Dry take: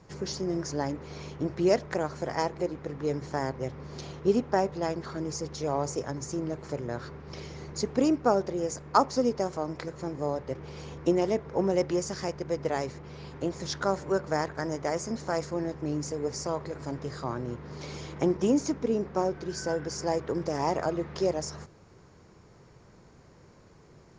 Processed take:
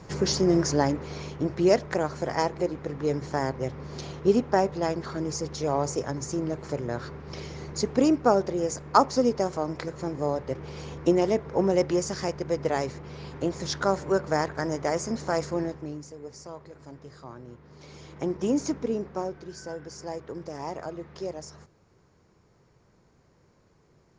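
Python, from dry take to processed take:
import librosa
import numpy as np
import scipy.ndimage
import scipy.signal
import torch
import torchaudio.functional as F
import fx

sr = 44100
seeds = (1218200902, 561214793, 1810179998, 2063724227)

y = fx.gain(x, sr, db=fx.line((0.62, 9.0), (1.33, 3.0), (15.61, 3.0), (16.07, -10.0), (17.7, -10.0), (18.69, 1.0), (19.58, -7.0)))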